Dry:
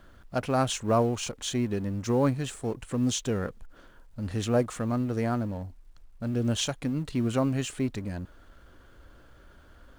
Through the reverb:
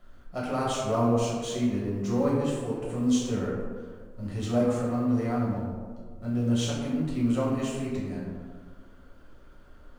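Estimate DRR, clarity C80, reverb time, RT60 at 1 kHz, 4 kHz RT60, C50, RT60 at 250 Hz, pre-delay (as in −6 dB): −6.5 dB, 2.5 dB, 1.7 s, 1.5 s, 0.70 s, 0.0 dB, 1.9 s, 5 ms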